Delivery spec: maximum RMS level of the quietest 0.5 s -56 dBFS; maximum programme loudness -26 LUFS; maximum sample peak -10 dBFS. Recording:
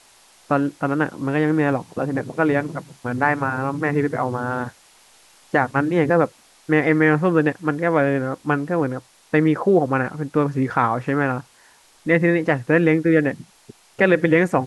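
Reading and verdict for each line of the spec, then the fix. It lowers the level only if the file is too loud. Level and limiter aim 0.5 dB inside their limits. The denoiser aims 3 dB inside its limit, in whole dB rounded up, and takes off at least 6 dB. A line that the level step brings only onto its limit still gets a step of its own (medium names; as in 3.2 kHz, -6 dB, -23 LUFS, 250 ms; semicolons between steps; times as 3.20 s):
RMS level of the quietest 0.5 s -53 dBFS: fail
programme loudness -20.5 LUFS: fail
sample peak -4.0 dBFS: fail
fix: trim -6 dB; peak limiter -10.5 dBFS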